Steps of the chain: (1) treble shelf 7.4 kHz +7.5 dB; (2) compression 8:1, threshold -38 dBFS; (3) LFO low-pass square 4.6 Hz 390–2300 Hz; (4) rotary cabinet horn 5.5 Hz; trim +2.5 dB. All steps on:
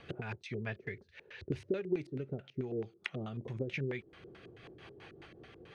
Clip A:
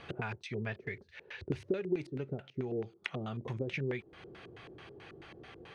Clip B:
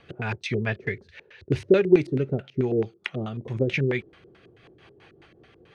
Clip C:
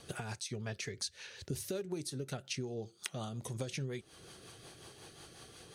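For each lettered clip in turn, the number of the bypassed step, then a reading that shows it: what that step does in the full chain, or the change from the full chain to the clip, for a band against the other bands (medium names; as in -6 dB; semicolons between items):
4, 1 kHz band +3.5 dB; 2, momentary loudness spread change -5 LU; 3, 4 kHz band +11.5 dB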